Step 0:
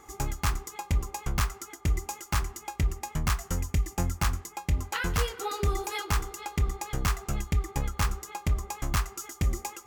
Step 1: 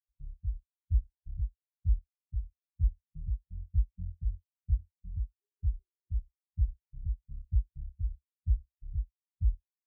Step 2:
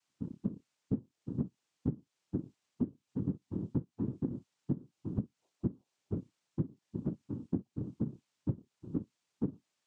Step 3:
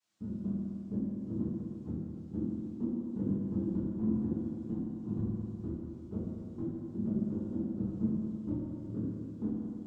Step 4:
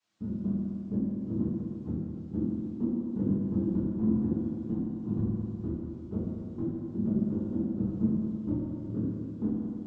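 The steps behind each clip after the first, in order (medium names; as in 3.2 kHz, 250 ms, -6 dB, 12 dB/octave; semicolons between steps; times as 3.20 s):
inverse Chebyshev low-pass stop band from 900 Hz, stop band 60 dB; spectral contrast expander 2.5:1
noise-vocoded speech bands 4; compression 12:1, threshold -47 dBFS, peak gain reduction 16.5 dB; trim +17.5 dB
peak limiter -27.5 dBFS, peak gain reduction 8 dB; chorus voices 6, 0.26 Hz, delay 24 ms, depth 3.4 ms; reverberation RT60 2.8 s, pre-delay 5 ms, DRR -6.5 dB
distance through air 71 m; trim +4.5 dB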